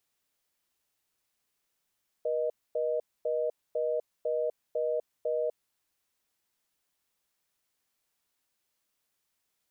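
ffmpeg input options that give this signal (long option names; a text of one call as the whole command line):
ffmpeg -f lavfi -i "aevalsrc='0.0335*(sin(2*PI*480*t)+sin(2*PI*620*t))*clip(min(mod(t,0.5),0.25-mod(t,0.5))/0.005,0,1)':duration=3.29:sample_rate=44100" out.wav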